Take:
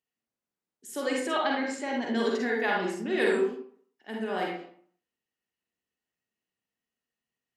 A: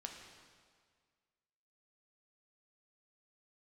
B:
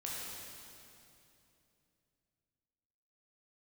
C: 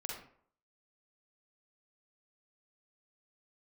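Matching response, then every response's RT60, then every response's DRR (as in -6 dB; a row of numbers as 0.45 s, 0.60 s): C; 1.8 s, 2.8 s, 0.60 s; 1.5 dB, -5.5 dB, -1.5 dB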